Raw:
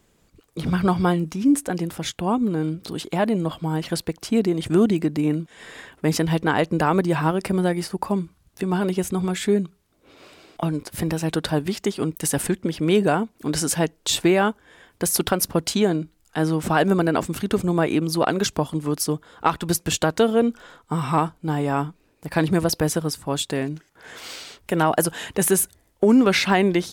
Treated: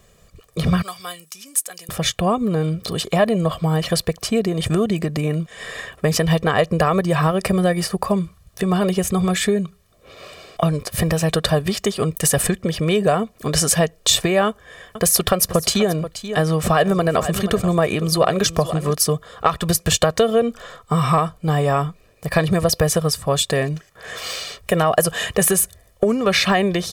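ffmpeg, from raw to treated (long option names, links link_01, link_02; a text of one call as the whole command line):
ffmpeg -i in.wav -filter_complex "[0:a]asettb=1/sr,asplit=3[link_01][link_02][link_03];[link_01]atrim=end=0.824[link_04];[link_02]atrim=start=0.82:end=1.89,asetpts=PTS-STARTPTS,afade=type=in:duration=0.004:curve=qsin,afade=type=out:start_time=1.066:duration=0.004:curve=qsin,aderivative[link_05];[link_03]atrim=start=1.886[link_06];[link_04][link_05]acrossfade=duration=0.004:curve1=hsin:curve2=qsin[link_07];[link_07][link_06]acrossfade=duration=0.004:curve1=qsin:curve2=hsin,asettb=1/sr,asplit=3[link_08][link_09][link_10];[link_08]atrim=end=14.474[link_11];[link_09]atrim=start=14.47:end=18.93,asetpts=PTS-STARTPTS,afade=type=in:duration=0.004:curve=qsin,afade=type=out:start_time=4.456:duration=0.004:curve=qsin,aecho=1:1:481:0.178,atrim=end_sample=196686[link_12];[link_10]atrim=start=18.926[link_13];[link_11][link_12]acrossfade=duration=0.004:curve1=hsin:curve2=qsin[link_14];[link_14][link_13]acrossfade=duration=0.004:curve1=qsin:curve2=hsin,acompressor=threshold=-20dB:ratio=6,aecho=1:1:1.7:0.71,volume=6.5dB" out.wav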